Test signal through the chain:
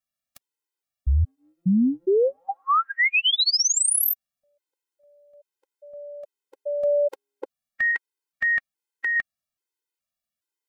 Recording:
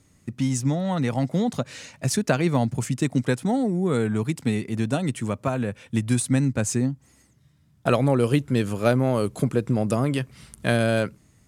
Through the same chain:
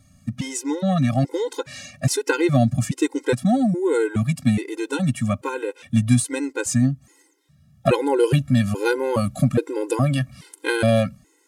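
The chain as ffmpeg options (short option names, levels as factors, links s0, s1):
-af "afftfilt=real='re*gt(sin(2*PI*1.2*pts/sr)*(1-2*mod(floor(b*sr/1024/270),2)),0)':imag='im*gt(sin(2*PI*1.2*pts/sr)*(1-2*mod(floor(b*sr/1024/270),2)),0)':win_size=1024:overlap=0.75,volume=2"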